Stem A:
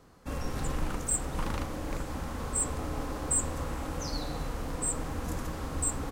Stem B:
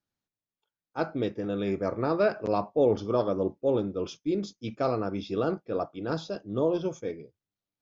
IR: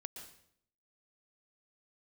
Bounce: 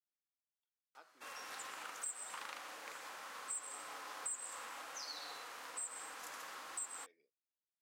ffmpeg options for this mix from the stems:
-filter_complex "[0:a]highshelf=f=5.4k:g=-5.5,adelay=950,volume=1.5dB,asplit=2[a][b];[b]volume=-3.5dB[c];[1:a]equalizer=f=270:w=0.57:g=7,acompressor=threshold=-29dB:ratio=6,volume=-17dB,asplit=2[d][e];[e]apad=whole_len=311401[f];[a][f]sidechaincompress=threshold=-54dB:ratio=8:attack=16:release=1130[g];[2:a]atrim=start_sample=2205[h];[c][h]afir=irnorm=-1:irlink=0[i];[g][d][i]amix=inputs=3:normalize=0,highpass=1.3k,acompressor=threshold=-43dB:ratio=2.5"

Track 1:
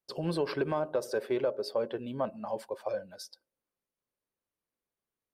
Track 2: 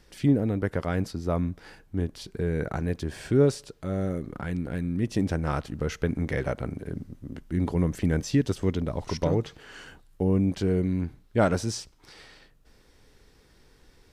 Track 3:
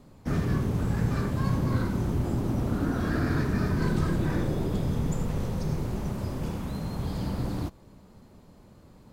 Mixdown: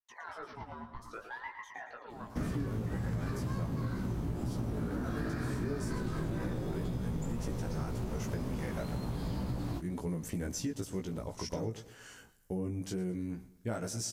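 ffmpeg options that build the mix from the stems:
-filter_complex "[0:a]acrossover=split=710|1600[a][b][c];[a]acompressor=threshold=-32dB:ratio=4[d];[b]acompressor=threshold=-45dB:ratio=4[e];[c]acompressor=threshold=-49dB:ratio=4[f];[d][e][f]amix=inputs=3:normalize=0,aeval=exprs='val(0)*sin(2*PI*940*n/s+940*0.6/0.64*sin(2*PI*0.64*n/s))':c=same,volume=-5dB,asplit=2[g][h];[h]volume=-8.5dB[i];[1:a]aexciter=amount=2.4:drive=7.9:freq=5.6k,adelay=2300,volume=-5.5dB,asplit=2[j][k];[k]volume=-18dB[l];[2:a]adelay=2100,volume=2.5dB[m];[i][l]amix=inputs=2:normalize=0,aecho=0:1:113|226|339|452|565|678:1|0.43|0.185|0.0795|0.0342|0.0147[n];[g][j][m][n]amix=inputs=4:normalize=0,flanger=delay=16:depth=2.3:speed=2,acompressor=threshold=-32dB:ratio=6"

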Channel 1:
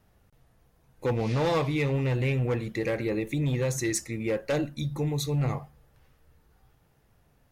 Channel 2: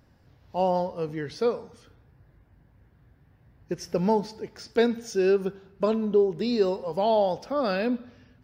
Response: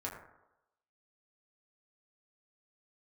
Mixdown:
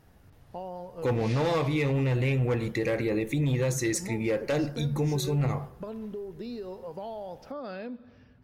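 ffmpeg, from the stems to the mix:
-filter_complex "[0:a]volume=2.5dB,asplit=2[a][b];[b]volume=-13.5dB[c];[1:a]highshelf=f=3.6k:g=-7,alimiter=limit=-19dB:level=0:latency=1:release=172,acompressor=threshold=-37dB:ratio=3,volume=-1.5dB[d];[2:a]atrim=start_sample=2205[e];[c][e]afir=irnorm=-1:irlink=0[f];[a][d][f]amix=inputs=3:normalize=0,alimiter=limit=-20dB:level=0:latency=1:release=72"

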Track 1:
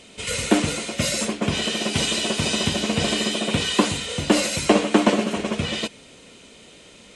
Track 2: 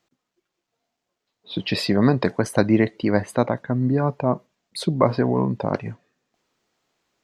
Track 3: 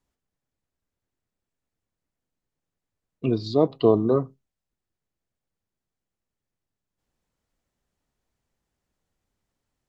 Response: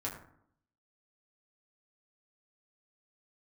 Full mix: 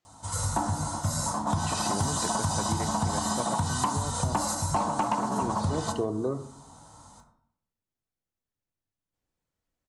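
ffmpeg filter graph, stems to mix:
-filter_complex "[0:a]firequalizer=gain_entry='entry(120,0);entry(420,-20);entry(860,10);entry(2400,-29);entry(4000,-10);entry(6200,-2);entry(12000,1)':delay=0.05:min_phase=1,adelay=50,volume=2.5dB,asplit=2[a][b];[b]volume=-4.5dB[c];[1:a]volume=-10dB,asplit=2[d][e];[2:a]adelay=2150,volume=-7dB,asplit=2[f][g];[g]volume=-10.5dB[h];[e]apad=whole_len=322028[i];[a][i]sidechaingate=range=-13dB:threshold=-55dB:ratio=16:detection=peak[j];[3:a]atrim=start_sample=2205[k];[c][h]amix=inputs=2:normalize=0[l];[l][k]afir=irnorm=-1:irlink=0[m];[j][d][f][m]amix=inputs=4:normalize=0,bandreject=f=231.1:t=h:w=4,bandreject=f=462.2:t=h:w=4,bandreject=f=693.3:t=h:w=4,bandreject=f=924.4:t=h:w=4,bandreject=f=1.1555k:t=h:w=4,bandreject=f=1.3866k:t=h:w=4,bandreject=f=1.6177k:t=h:w=4,bandreject=f=1.8488k:t=h:w=4,bandreject=f=2.0799k:t=h:w=4,bandreject=f=2.311k:t=h:w=4,bandreject=f=2.5421k:t=h:w=4,bandreject=f=2.7732k:t=h:w=4,bandreject=f=3.0043k:t=h:w=4,bandreject=f=3.2354k:t=h:w=4,bandreject=f=3.4665k:t=h:w=4,bandreject=f=3.6976k:t=h:w=4,bandreject=f=3.9287k:t=h:w=4,bandreject=f=4.1598k:t=h:w=4,bandreject=f=4.3909k:t=h:w=4,bandreject=f=4.622k:t=h:w=4,bandreject=f=4.8531k:t=h:w=4,bandreject=f=5.0842k:t=h:w=4,bandreject=f=5.3153k:t=h:w=4,bandreject=f=5.5464k:t=h:w=4,asoftclip=type=tanh:threshold=-7.5dB,acompressor=threshold=-24dB:ratio=10"

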